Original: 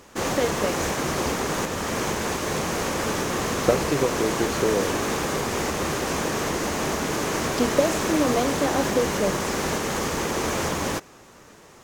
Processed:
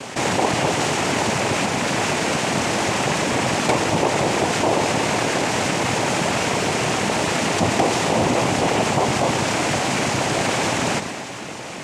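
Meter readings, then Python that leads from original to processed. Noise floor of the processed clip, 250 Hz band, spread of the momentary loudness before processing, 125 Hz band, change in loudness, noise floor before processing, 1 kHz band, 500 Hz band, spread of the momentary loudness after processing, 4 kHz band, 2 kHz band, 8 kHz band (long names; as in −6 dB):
−32 dBFS, +3.0 dB, 4 LU, +5.5 dB, +4.5 dB, −49 dBFS, +6.5 dB, +2.5 dB, 2 LU, +6.5 dB, +6.0 dB, +4.0 dB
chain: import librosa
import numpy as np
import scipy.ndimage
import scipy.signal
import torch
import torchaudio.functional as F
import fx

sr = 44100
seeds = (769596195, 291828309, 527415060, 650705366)

p1 = x + fx.echo_feedback(x, sr, ms=117, feedback_pct=53, wet_db=-16, dry=0)
p2 = (np.mod(10.0 ** (8.0 / 20.0) * p1 + 1.0, 2.0) - 1.0) / 10.0 ** (8.0 / 20.0)
p3 = fx.noise_vocoder(p2, sr, seeds[0], bands=4)
y = fx.env_flatten(p3, sr, amount_pct=50)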